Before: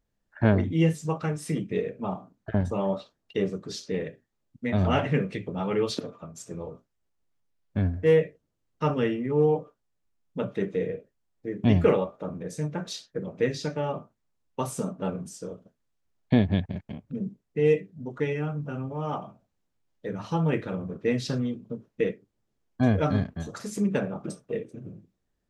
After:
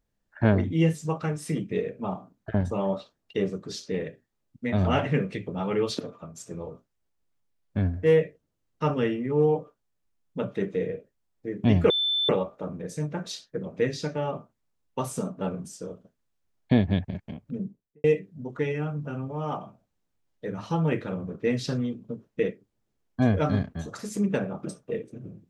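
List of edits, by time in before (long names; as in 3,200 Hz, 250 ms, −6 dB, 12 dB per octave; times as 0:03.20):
0:11.90: insert tone 3,530 Hz −22.5 dBFS 0.39 s
0:17.13–0:17.65: fade out and dull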